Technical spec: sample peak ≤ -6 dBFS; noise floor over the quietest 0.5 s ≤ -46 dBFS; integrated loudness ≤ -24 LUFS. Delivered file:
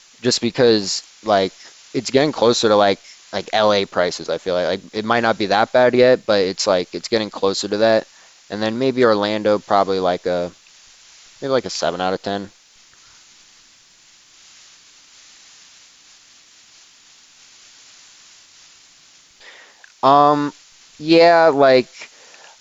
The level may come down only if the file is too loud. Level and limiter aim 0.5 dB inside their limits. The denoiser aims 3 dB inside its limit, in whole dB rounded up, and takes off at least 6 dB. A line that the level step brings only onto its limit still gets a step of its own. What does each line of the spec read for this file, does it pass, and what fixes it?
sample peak -2.0 dBFS: fail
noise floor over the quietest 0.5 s -51 dBFS: OK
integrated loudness -17.5 LUFS: fail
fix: gain -7 dB

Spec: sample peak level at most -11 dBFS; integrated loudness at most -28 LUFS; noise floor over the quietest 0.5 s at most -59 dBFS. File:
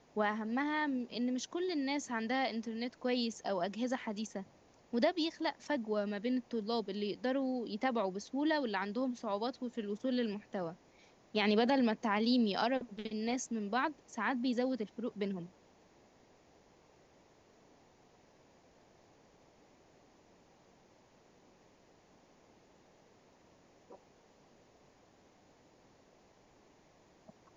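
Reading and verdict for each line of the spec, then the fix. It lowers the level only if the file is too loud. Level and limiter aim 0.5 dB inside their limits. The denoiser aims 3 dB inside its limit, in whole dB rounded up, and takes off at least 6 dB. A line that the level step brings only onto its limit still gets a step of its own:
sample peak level -18.0 dBFS: OK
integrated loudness -35.5 LUFS: OK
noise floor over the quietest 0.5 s -65 dBFS: OK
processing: none

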